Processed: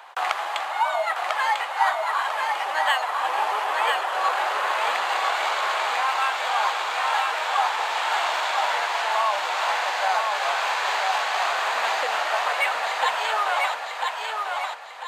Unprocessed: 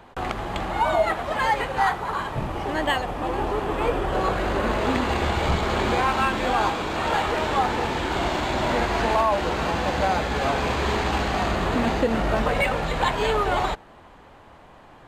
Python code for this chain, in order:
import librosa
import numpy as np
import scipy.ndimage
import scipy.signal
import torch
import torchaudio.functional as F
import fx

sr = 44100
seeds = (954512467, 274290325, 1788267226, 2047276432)

y = scipy.signal.sosfilt(scipy.signal.butter(4, 740.0, 'highpass', fs=sr, output='sos'), x)
y = fx.rider(y, sr, range_db=5, speed_s=0.5)
y = fx.echo_feedback(y, sr, ms=996, feedback_pct=36, wet_db=-3.5)
y = F.gain(torch.from_numpy(y), 1.5).numpy()